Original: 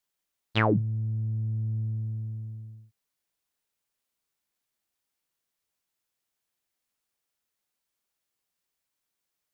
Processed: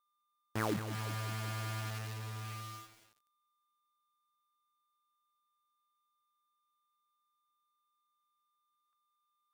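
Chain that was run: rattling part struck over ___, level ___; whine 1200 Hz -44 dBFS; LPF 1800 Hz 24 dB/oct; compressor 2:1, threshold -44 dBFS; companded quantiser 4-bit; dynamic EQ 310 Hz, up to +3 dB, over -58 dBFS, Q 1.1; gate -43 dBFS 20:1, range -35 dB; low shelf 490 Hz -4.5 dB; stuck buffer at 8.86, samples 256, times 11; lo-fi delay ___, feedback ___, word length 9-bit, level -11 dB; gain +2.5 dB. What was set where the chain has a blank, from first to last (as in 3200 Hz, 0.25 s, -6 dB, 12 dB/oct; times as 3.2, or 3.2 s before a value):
-37 dBFS, -33 dBFS, 0.188 s, 80%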